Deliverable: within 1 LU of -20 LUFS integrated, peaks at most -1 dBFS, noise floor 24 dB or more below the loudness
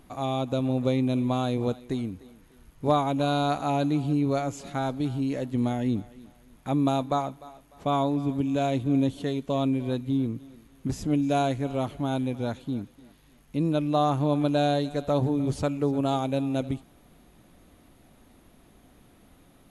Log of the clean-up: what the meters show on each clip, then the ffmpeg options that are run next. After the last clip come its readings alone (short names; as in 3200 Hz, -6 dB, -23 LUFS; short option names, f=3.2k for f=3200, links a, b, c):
loudness -27.0 LUFS; peak -12.0 dBFS; loudness target -20.0 LUFS
-> -af "volume=7dB"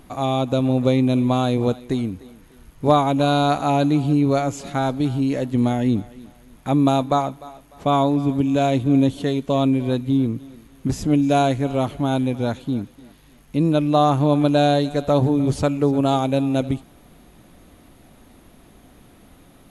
loudness -20.0 LUFS; peak -5.0 dBFS; noise floor -50 dBFS